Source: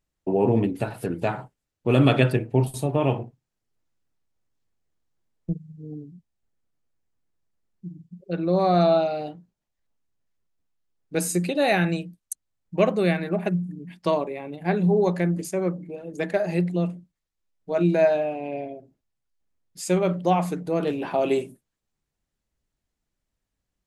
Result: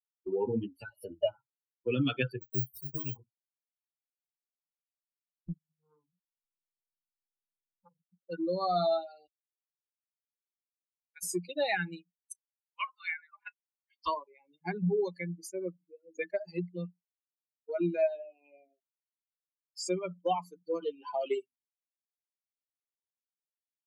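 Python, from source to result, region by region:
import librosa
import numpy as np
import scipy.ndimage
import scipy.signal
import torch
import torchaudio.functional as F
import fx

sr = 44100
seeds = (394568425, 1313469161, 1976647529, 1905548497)

y = fx.chain(x, sr, fx.peak_eq(hz=1500.0, db=-5.0, octaves=2.4),
    fx.small_body(hz=(600.0, 2900.0), ring_ms=60, db=18), at=(0.91, 1.35))
y = fx.chain(y, sr, fx.highpass(hz=42.0, slope=12),
    fx.peak_eq(hz=750.0, db=-13.0, octaves=1.4),
    fx.resample_bad(factor=2, down='filtered', up='zero_stuff'), at=(2.42, 3.16))
y = fx.chain(y, sr, fx.low_shelf(hz=79.0, db=10.5),
    fx.transformer_sat(knee_hz=730.0), at=(5.79, 7.99))
y = fx.chain(y, sr, fx.highpass(hz=1300.0, slope=12),
    fx.air_absorb(metres=430.0),
    fx.fixed_phaser(hz=1900.0, stages=8), at=(9.27, 11.23))
y = fx.chain(y, sr, fx.highpass(hz=940.0, slope=24),
    fx.env_lowpass_down(base_hz=2500.0, full_db=-29.0),
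    fx.doubler(ms=31.0, db=-11.5), at=(12.18, 14.08))
y = fx.bin_expand(y, sr, power=3.0)
y = fx.low_shelf(y, sr, hz=270.0, db=-6.5)
y = fx.band_squash(y, sr, depth_pct=70)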